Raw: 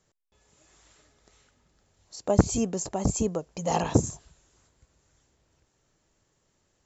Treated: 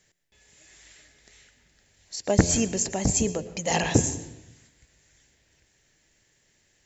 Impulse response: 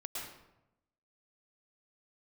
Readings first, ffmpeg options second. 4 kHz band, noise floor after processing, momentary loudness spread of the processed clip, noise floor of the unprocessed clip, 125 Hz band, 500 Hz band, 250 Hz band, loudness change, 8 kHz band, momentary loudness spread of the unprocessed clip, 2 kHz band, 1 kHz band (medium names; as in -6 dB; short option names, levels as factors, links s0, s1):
+8.5 dB, -67 dBFS, 14 LU, -73 dBFS, +1.0 dB, +0.5 dB, +1.0 dB, +2.0 dB, no reading, 13 LU, +10.0 dB, -0.5 dB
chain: -filter_complex "[0:a]highshelf=f=1500:t=q:w=3:g=6,bandreject=f=85.9:t=h:w=4,bandreject=f=171.8:t=h:w=4,bandreject=f=257.7:t=h:w=4,bandreject=f=343.6:t=h:w=4,bandreject=f=429.5:t=h:w=4,bandreject=f=515.4:t=h:w=4,asplit=2[s0][s1];[1:a]atrim=start_sample=2205[s2];[s1][s2]afir=irnorm=-1:irlink=0,volume=0.299[s3];[s0][s3]amix=inputs=2:normalize=0"